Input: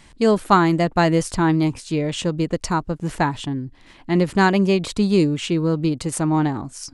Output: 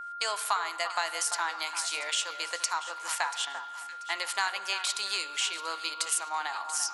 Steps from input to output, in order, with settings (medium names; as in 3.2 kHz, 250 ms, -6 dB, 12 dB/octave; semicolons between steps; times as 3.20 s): expander -36 dBFS; high-pass 860 Hz 24 dB/octave; treble shelf 3.3 kHz +10 dB; compression 4:1, threshold -28 dBFS, peak gain reduction 15 dB; whistle 1.4 kHz -37 dBFS; echo whose repeats swap between lows and highs 343 ms, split 1.8 kHz, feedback 56%, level -9.5 dB; on a send at -11.5 dB: reverberation RT60 1.1 s, pre-delay 6 ms